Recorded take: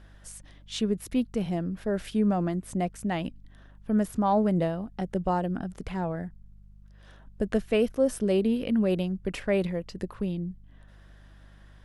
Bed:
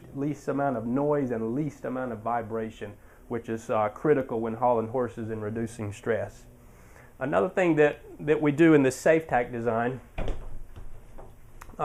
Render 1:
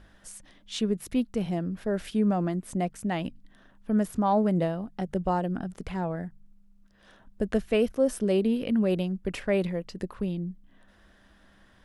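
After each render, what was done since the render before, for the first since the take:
hum removal 50 Hz, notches 3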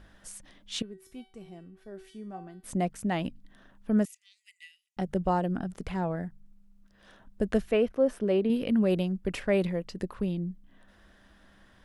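0:00.82–0:02.64: tuned comb filter 380 Hz, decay 0.41 s, mix 90%
0:04.05–0:04.97: Chebyshev high-pass with heavy ripple 1,900 Hz, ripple 9 dB
0:07.71–0:08.50: bass and treble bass −5 dB, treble −14 dB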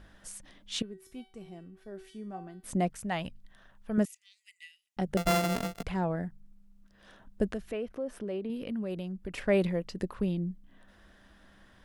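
0:02.90–0:03.98: parametric band 280 Hz −12 dB 1.1 octaves
0:05.17–0:05.83: samples sorted by size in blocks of 64 samples
0:07.51–0:09.38: downward compressor 2 to 1, threshold −40 dBFS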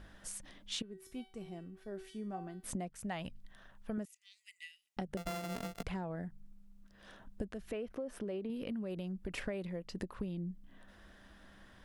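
downward compressor 16 to 1, threshold −36 dBFS, peak gain reduction 16.5 dB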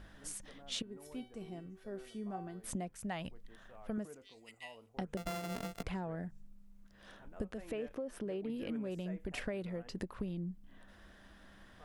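mix in bed −31 dB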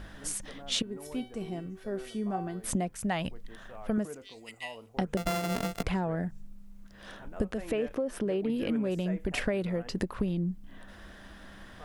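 level +9.5 dB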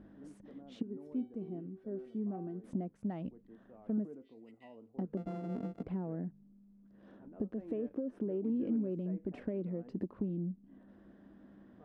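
soft clipping −22.5 dBFS, distortion −19 dB
resonant band-pass 270 Hz, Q 1.9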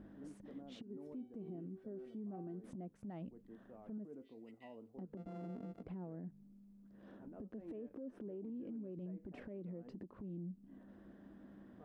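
downward compressor 10 to 1, threshold −40 dBFS, peak gain reduction 11 dB
brickwall limiter −40 dBFS, peak gain reduction 9.5 dB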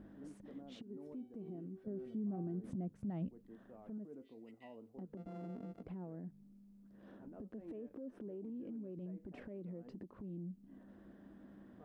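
0:01.87–0:03.28: parametric band 100 Hz +11 dB 2.6 octaves

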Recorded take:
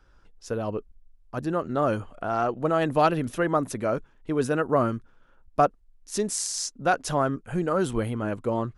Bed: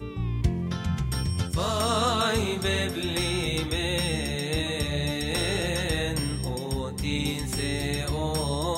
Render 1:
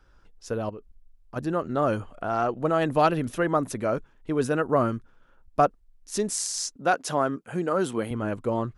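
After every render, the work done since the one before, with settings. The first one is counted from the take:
0:00.69–0:01.36: downward compressor, threshold −36 dBFS
0:06.76–0:08.11: high-pass filter 180 Hz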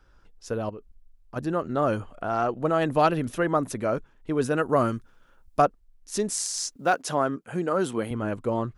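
0:04.57–0:05.62: high-shelf EQ 3,600 Hz +9 dB
0:06.37–0:07.02: log-companded quantiser 8 bits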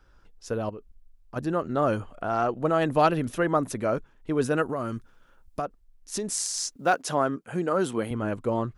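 0:04.66–0:06.29: downward compressor, threshold −26 dBFS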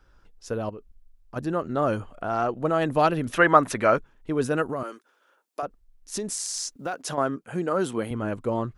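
0:03.32–0:03.97: parametric band 1,800 Hz +12 dB 2.9 octaves
0:04.83–0:05.63: high-pass filter 360 Hz 24 dB per octave
0:06.30–0:07.18: downward compressor, threshold −26 dBFS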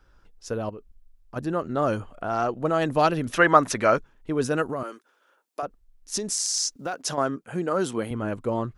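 dynamic equaliser 5,600 Hz, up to +7 dB, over −47 dBFS, Q 1.4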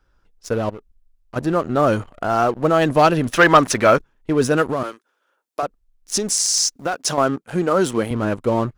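leveller curve on the samples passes 2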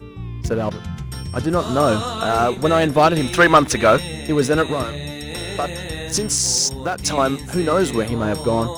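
mix in bed −1.5 dB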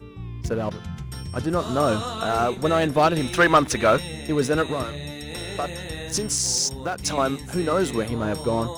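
level −4.5 dB

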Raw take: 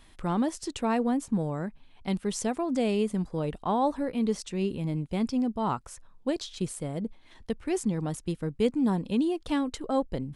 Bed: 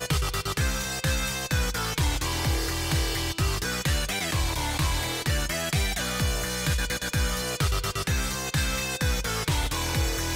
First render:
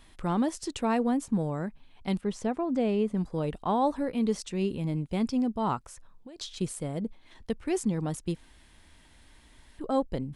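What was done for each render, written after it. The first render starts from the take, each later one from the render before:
0:02.21–0:03.17: low-pass filter 1,700 Hz 6 dB per octave
0:05.82–0:06.39: downward compressor 12 to 1, threshold −42 dBFS
0:08.36–0:09.79: fill with room tone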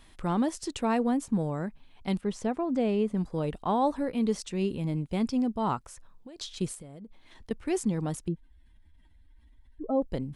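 0:06.74–0:07.51: downward compressor 16 to 1, threshold −41 dBFS
0:08.28–0:10.02: expanding power law on the bin magnitudes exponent 1.9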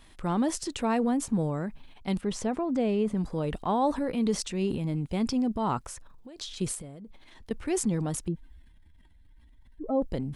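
transient designer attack 0 dB, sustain +7 dB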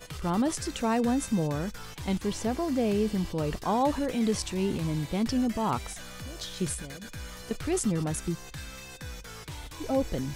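mix in bed −15 dB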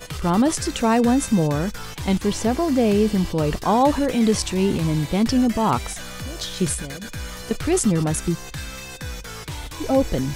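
level +8.5 dB

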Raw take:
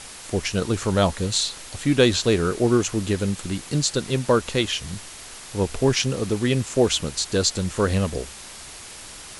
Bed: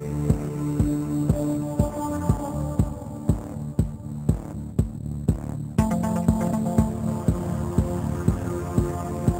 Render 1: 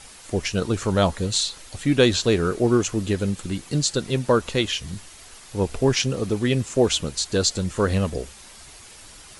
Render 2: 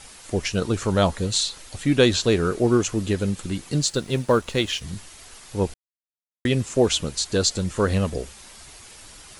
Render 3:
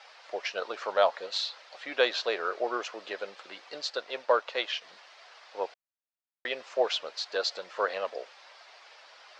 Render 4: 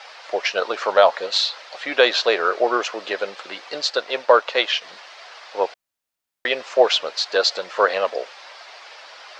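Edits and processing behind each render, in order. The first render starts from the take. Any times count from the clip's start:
broadband denoise 7 dB, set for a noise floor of −40 dBFS
0:03.82–0:04.82: mu-law and A-law mismatch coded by A; 0:05.74–0:06.45: silence
elliptic band-pass filter 580–5,000 Hz, stop band 80 dB; high-shelf EQ 3,200 Hz −10.5 dB
level +11.5 dB; brickwall limiter −2 dBFS, peak gain reduction 3 dB

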